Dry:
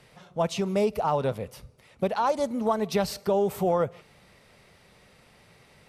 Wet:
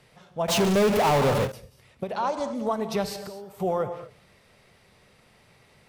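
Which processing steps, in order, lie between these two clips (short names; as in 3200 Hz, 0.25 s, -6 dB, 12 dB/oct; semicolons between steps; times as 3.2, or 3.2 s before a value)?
2.12–2.55 LPF 8300 Hz 24 dB/oct; 3.15–3.6 compressor 6:1, threshold -38 dBFS, peak gain reduction 16.5 dB; non-linear reverb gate 0.27 s flat, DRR 8.5 dB; 0.48–1.52 power-law curve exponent 0.35; ending taper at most 200 dB/s; gain -2 dB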